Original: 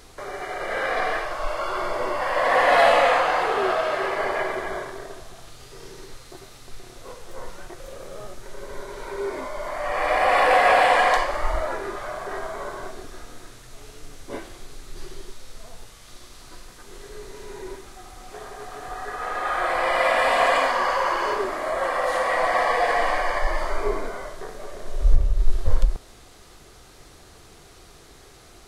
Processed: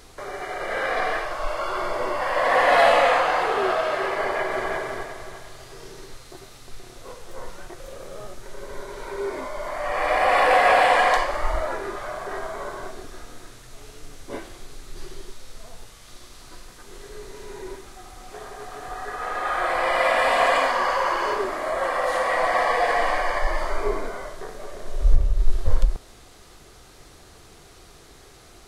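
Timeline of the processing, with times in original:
4.16–4.69 s: echo throw 350 ms, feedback 40%, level -5 dB

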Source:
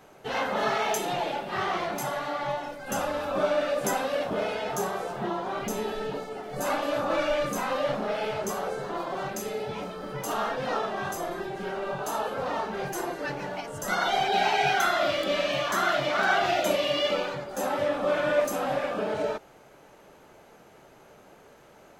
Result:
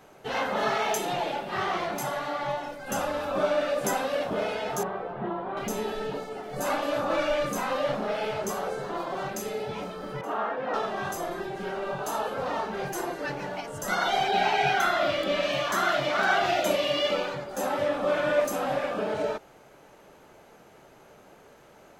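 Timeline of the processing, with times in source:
4.83–5.57 s: distance through air 480 m
10.21–10.74 s: three-band isolator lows -21 dB, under 190 Hz, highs -21 dB, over 2.5 kHz
14.31–15.43 s: tone controls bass +2 dB, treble -4 dB

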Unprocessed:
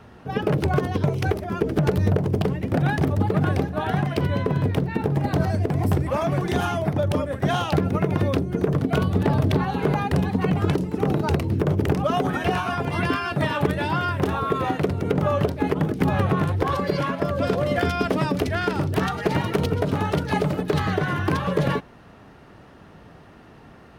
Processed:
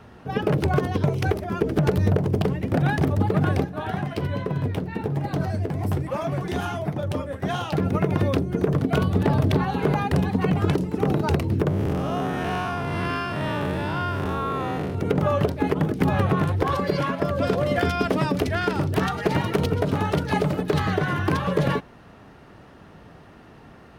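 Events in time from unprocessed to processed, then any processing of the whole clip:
3.64–7.79 s: flange 1.2 Hz, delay 5.3 ms, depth 6.5 ms, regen -49%
11.68–14.95 s: spectral blur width 185 ms

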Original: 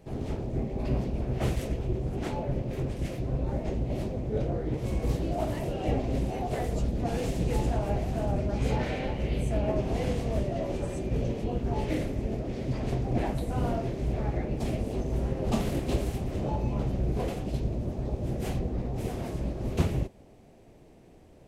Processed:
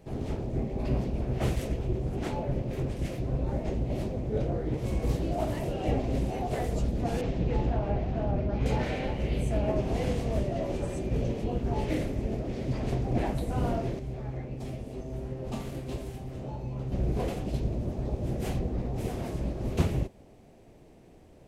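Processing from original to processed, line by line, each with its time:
7.21–8.66 s: distance through air 200 m
13.99–16.92 s: feedback comb 130 Hz, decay 0.42 s, mix 70%

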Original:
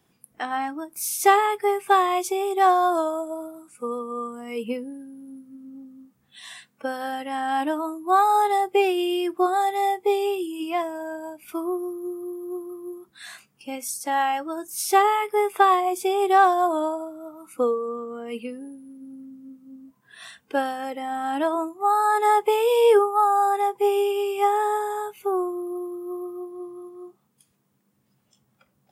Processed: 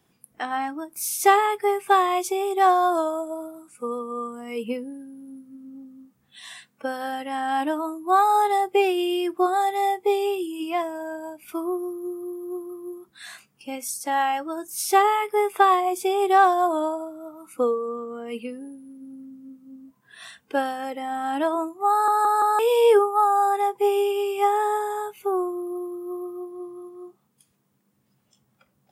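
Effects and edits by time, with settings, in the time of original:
21.91 s: stutter in place 0.17 s, 4 plays

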